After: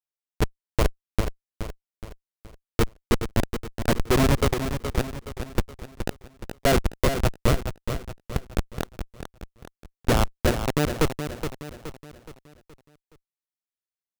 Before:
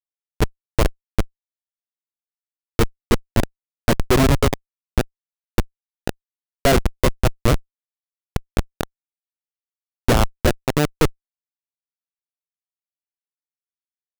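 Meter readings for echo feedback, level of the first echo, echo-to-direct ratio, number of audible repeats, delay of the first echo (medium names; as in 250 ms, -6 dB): 45%, -8.5 dB, -7.5 dB, 4, 421 ms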